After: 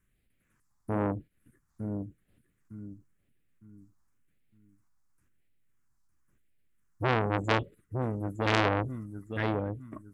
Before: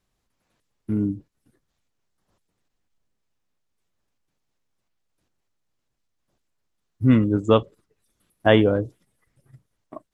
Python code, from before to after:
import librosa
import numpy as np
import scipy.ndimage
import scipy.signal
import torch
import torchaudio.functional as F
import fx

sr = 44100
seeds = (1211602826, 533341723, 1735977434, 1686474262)

y = fx.phaser_stages(x, sr, stages=4, low_hz=470.0, high_hz=1000.0, hz=0.95, feedback_pct=30)
y = fx.echo_feedback(y, sr, ms=908, feedback_pct=30, wet_db=-8.5)
y = fx.transformer_sat(y, sr, knee_hz=2500.0)
y = y * 10.0 ** (1.5 / 20.0)